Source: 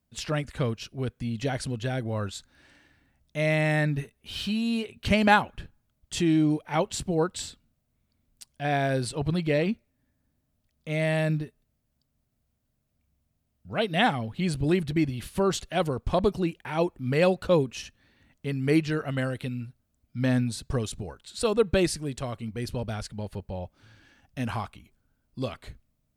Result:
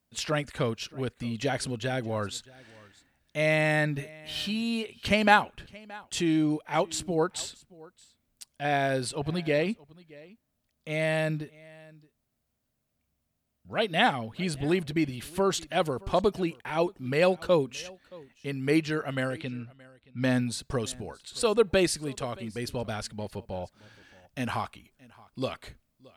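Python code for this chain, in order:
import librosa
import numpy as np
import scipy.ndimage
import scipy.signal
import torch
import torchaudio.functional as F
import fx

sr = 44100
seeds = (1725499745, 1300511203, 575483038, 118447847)

p1 = fx.rider(x, sr, range_db=3, speed_s=2.0)
p2 = x + (p1 * librosa.db_to_amplitude(-1.0))
p3 = fx.low_shelf(p2, sr, hz=190.0, db=-9.5)
p4 = fx.env_lowpass(p3, sr, base_hz=1100.0, full_db=-21.5, at=(19.27, 20.58), fade=0.02)
p5 = p4 + 10.0 ** (-23.0 / 20.0) * np.pad(p4, (int(623 * sr / 1000.0), 0))[:len(p4)]
y = p5 * librosa.db_to_amplitude(-4.5)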